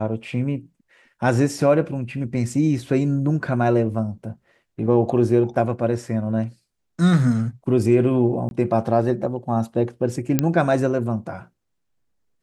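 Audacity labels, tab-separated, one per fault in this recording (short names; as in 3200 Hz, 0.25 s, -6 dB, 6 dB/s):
8.490000	8.510000	gap 21 ms
10.390000	10.390000	pop -4 dBFS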